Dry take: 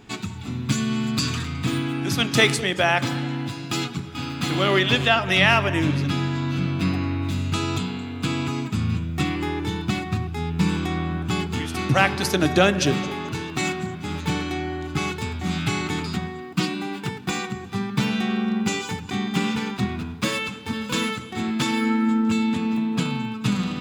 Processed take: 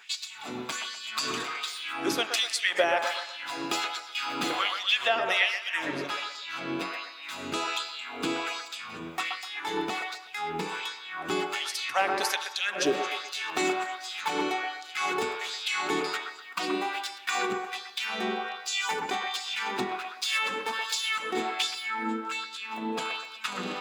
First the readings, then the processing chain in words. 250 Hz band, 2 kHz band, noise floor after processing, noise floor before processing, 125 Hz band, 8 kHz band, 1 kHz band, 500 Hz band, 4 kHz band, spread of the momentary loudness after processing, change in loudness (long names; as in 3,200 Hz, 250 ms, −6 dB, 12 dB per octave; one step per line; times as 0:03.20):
−14.0 dB, −4.0 dB, −44 dBFS, −35 dBFS, −26.0 dB, −3.0 dB, −2.5 dB, −5.5 dB, −2.5 dB, 9 LU, −6.0 dB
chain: downward compressor, threshold −24 dBFS, peak gain reduction 12 dB
auto-filter high-pass sine 1.3 Hz 380–4,800 Hz
delay with a band-pass on its return 125 ms, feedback 35%, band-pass 980 Hz, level −4 dB